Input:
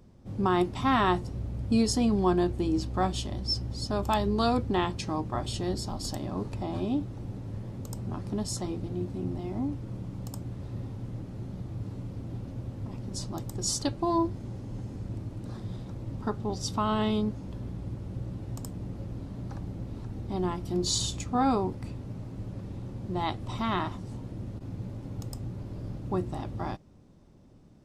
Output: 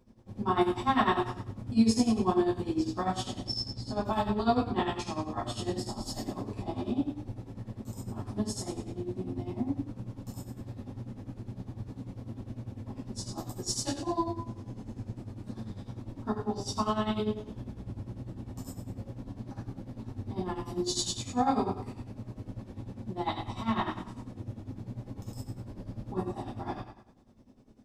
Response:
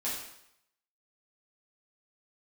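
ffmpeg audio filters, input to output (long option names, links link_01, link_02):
-filter_complex "[1:a]atrim=start_sample=2205[link_01];[0:a][link_01]afir=irnorm=-1:irlink=0,tremolo=f=10:d=0.77,asettb=1/sr,asplit=3[link_02][link_03][link_04];[link_02]atrim=end=3.734[link_05];[link_03]atrim=start=3.73:end=4.76,asetpts=PTS-STARTPTS,afade=type=in:duration=0.004:curve=qsin,afade=type=out:start_time=1.026:duration=0.004:curve=qsin,aemphasis=mode=reproduction:type=cd[link_06];[link_04]atrim=start=4.756[link_07];[link_05][link_06]acrossfade=duration=0.004:curve1=hsin:curve2=qsin[link_08];[link_08][link_07]acrossfade=duration=0.004:curve1=qsin:curve2=hsin,volume=-3.5dB"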